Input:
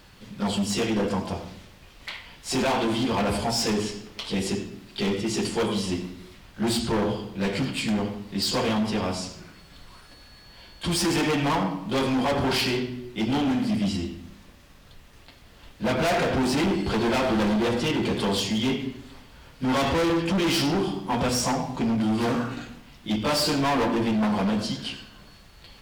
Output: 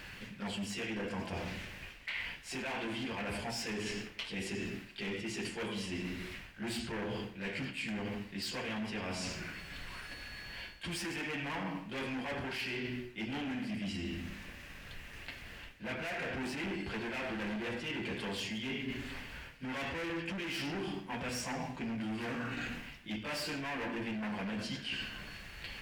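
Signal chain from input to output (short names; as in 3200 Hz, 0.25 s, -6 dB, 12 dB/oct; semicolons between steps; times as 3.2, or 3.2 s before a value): band shelf 2100 Hz +9.5 dB 1.1 oct; reverse; compressor 16:1, threshold -36 dBFS, peak gain reduction 20 dB; reverse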